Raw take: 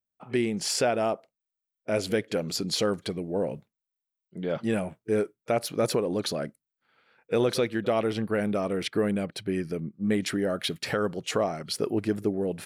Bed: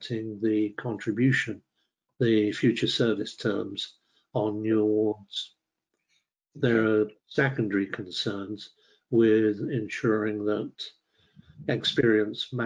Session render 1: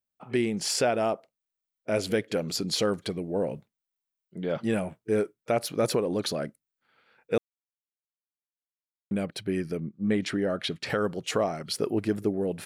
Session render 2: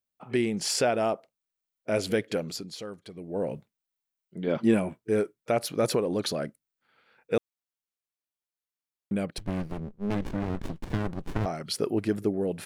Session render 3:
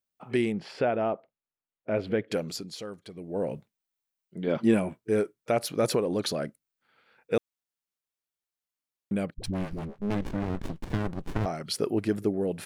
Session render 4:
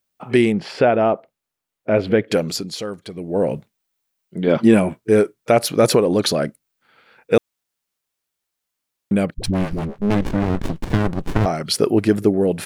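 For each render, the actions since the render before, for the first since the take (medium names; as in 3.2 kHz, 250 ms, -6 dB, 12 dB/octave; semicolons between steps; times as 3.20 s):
7.38–9.11 s: mute; 9.77–10.90 s: distance through air 63 m
2.31–3.51 s: dip -13 dB, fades 0.40 s; 4.47–5.00 s: small resonant body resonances 250/350/1000/2300 Hz, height 8 dB; 9.38–11.46 s: sliding maximum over 65 samples
0.52–2.31 s: distance through air 410 m; 9.34–10.02 s: phase dispersion highs, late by 76 ms, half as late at 380 Hz
trim +11 dB; peak limiter -3 dBFS, peak gain reduction 2 dB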